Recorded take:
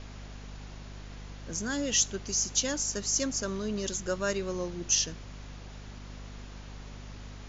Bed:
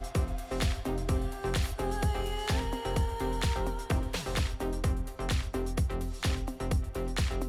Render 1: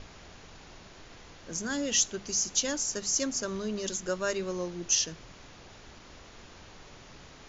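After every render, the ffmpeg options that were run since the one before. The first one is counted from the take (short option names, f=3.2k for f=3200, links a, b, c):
-af "bandreject=f=50:t=h:w=6,bandreject=f=100:t=h:w=6,bandreject=f=150:t=h:w=6,bandreject=f=200:t=h:w=6,bandreject=f=250:t=h:w=6"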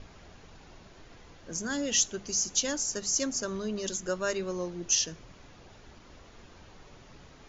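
-af "afftdn=nr=6:nf=-51"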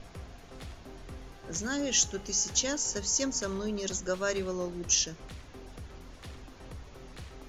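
-filter_complex "[1:a]volume=-16dB[a];[0:a][a]amix=inputs=2:normalize=0"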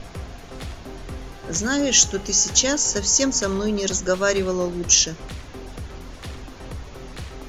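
-af "volume=10.5dB"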